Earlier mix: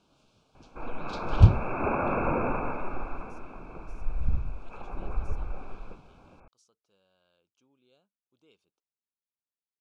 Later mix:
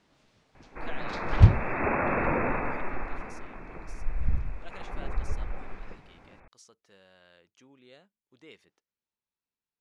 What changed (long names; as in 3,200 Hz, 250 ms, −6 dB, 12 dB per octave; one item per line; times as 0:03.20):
speech +11.5 dB
master: remove Butterworth band-reject 1,900 Hz, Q 2.2